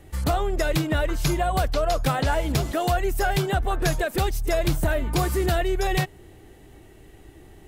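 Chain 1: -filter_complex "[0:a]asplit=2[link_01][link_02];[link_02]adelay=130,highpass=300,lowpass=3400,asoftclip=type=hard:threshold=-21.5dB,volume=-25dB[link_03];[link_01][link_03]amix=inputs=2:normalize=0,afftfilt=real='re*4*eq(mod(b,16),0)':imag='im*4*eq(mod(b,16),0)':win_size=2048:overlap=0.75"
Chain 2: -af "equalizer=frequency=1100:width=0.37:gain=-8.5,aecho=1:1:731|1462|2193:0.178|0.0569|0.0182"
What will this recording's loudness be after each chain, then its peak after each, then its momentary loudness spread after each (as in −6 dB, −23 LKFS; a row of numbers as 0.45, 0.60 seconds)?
−26.0, −27.5 LKFS; −9.0, −13.5 dBFS; 9, 10 LU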